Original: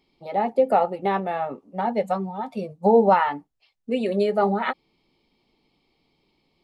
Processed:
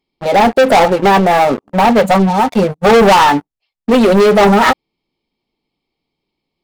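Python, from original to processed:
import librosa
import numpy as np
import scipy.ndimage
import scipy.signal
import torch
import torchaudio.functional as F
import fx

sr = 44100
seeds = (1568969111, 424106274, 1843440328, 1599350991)

y = fx.leveller(x, sr, passes=5)
y = y * 10.0 ** (2.5 / 20.0)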